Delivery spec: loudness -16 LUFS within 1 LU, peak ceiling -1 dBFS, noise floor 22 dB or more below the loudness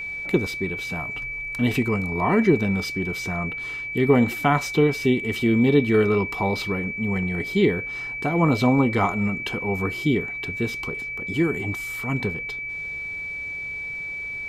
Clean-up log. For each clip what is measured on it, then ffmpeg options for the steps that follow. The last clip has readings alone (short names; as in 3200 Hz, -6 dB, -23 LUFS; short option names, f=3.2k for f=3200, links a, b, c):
steady tone 2300 Hz; tone level -29 dBFS; loudness -23.5 LUFS; peak -6.5 dBFS; loudness target -16.0 LUFS
-> -af "bandreject=f=2.3k:w=30"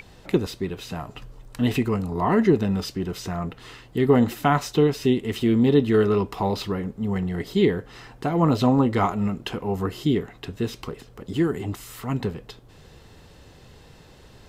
steady tone none; loudness -23.5 LUFS; peak -6.0 dBFS; loudness target -16.0 LUFS
-> -af "volume=7.5dB,alimiter=limit=-1dB:level=0:latency=1"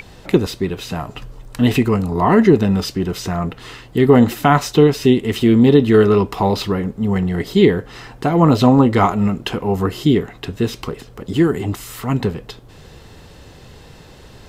loudness -16.5 LUFS; peak -1.0 dBFS; noise floor -42 dBFS